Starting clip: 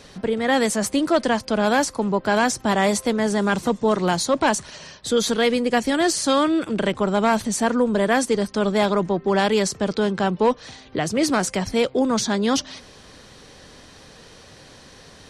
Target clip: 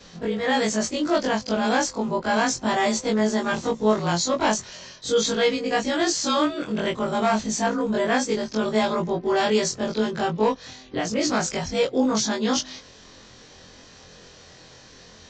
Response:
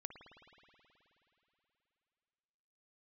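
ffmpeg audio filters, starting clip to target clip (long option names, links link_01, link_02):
-af "afftfilt=real='re':imag='-im':win_size=2048:overlap=0.75,aresample=16000,aresample=44100,crystalizer=i=1:c=0,volume=1.5dB"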